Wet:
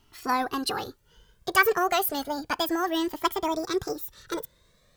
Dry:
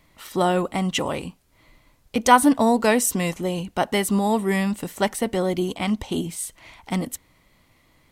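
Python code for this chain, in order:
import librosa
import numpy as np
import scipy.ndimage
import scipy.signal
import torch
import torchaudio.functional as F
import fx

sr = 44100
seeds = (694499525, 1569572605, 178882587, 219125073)

y = fx.speed_glide(x, sr, from_pct=138, to_pct=189)
y = fx.comb_cascade(y, sr, direction='rising', hz=0.31)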